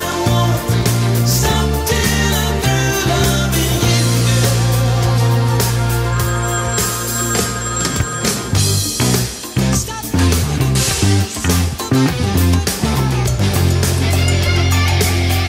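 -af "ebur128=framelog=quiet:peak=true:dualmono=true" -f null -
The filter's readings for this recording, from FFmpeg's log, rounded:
Integrated loudness:
  I:         -12.1 LUFS
  Threshold: -22.1 LUFS
Loudness range:
  LRA:         2.0 LU
  Threshold: -32.2 LUFS
  LRA low:   -13.3 LUFS
  LRA high:  -11.2 LUFS
True peak:
  Peak:       -1.3 dBFS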